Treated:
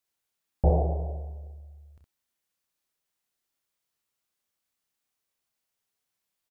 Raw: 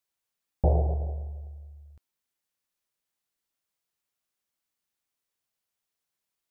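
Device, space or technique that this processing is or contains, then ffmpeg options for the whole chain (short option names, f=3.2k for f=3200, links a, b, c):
slapback doubling: -filter_complex "[0:a]asplit=3[a][b][c];[b]adelay=30,volume=-6.5dB[d];[c]adelay=64,volume=-4dB[e];[a][d][e]amix=inputs=3:normalize=0"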